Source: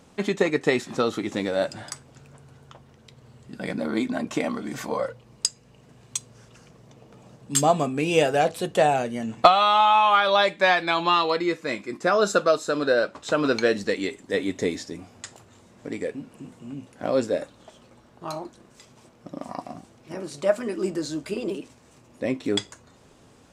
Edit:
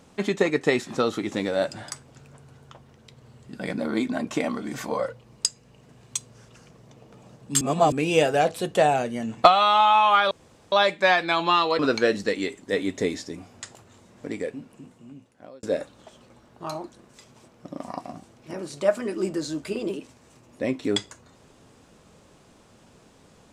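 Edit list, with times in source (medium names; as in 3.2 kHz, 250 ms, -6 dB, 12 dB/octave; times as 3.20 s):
7.61–7.92 s: reverse
10.31 s: insert room tone 0.41 s
11.38–13.40 s: delete
15.95–17.24 s: fade out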